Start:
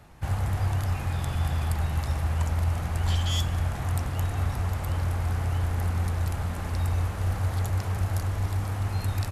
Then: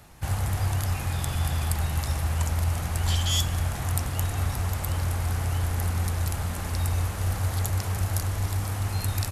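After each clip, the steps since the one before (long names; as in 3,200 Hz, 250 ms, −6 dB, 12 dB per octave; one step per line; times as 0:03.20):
high-shelf EQ 3,900 Hz +10.5 dB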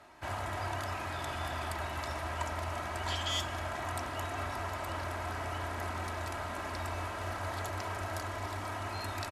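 resonant band-pass 1,000 Hz, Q 0.57
comb filter 3.1 ms, depth 57%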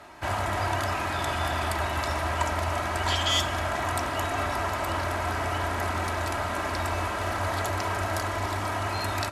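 convolution reverb RT60 0.60 s, pre-delay 5 ms, DRR 14.5 dB
level +9 dB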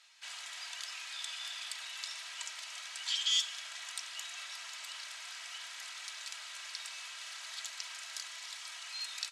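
flat-topped band-pass 5,100 Hz, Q 0.94
level −2 dB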